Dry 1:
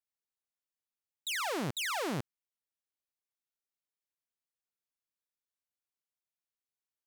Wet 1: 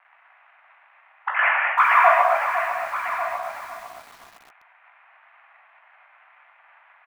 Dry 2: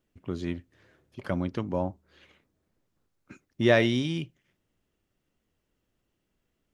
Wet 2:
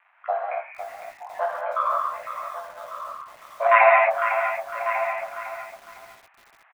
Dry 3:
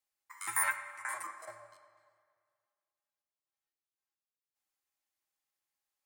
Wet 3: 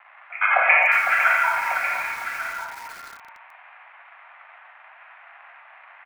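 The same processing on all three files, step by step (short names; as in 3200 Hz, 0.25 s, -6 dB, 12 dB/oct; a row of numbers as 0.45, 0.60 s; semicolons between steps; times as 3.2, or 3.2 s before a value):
random spectral dropouts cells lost 84%; dynamic EQ 900 Hz, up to -3 dB, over -53 dBFS, Q 0.79; in parallel at +1 dB: limiter -28 dBFS; on the sum: soft clip -20.5 dBFS; chorus 0.59 Hz, delay 16 ms, depth 3.6 ms; sample-and-hold 11×; crackle 450/s -56 dBFS; air absorption 60 m; on a send: echo 1.146 s -11.5 dB; on the sum: non-linear reverb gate 0.3 s flat, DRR -2.5 dB; mistuned SSB +330 Hz 350–2000 Hz; lo-fi delay 0.505 s, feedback 35%, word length 10-bit, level -9 dB; normalise peaks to -3 dBFS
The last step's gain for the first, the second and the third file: +20.5, +17.0, +28.0 dB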